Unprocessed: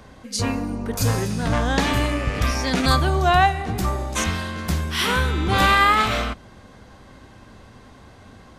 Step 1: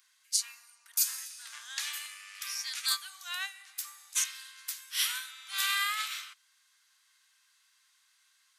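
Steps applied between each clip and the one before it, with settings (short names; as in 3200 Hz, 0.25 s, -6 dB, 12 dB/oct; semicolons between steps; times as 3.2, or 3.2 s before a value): inverse Chebyshev high-pass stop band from 270 Hz, stop band 70 dB; differentiator; upward expander 1.5:1, over -40 dBFS; gain +1.5 dB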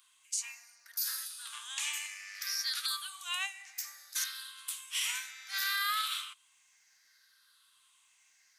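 moving spectral ripple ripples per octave 0.65, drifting -0.64 Hz, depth 11 dB; limiter -22.5 dBFS, peak gain reduction 11.5 dB; crackle 87/s -67 dBFS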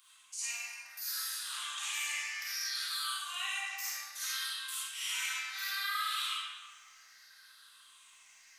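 reverse; compressor 6:1, threshold -42 dBFS, peak gain reduction 12.5 dB; reverse; reverb RT60 1.5 s, pre-delay 10 ms, DRR -9 dB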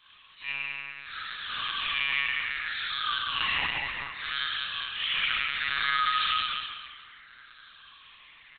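feedback echo 0.199 s, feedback 34%, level -5.5 dB; monotone LPC vocoder at 8 kHz 140 Hz; gain +8.5 dB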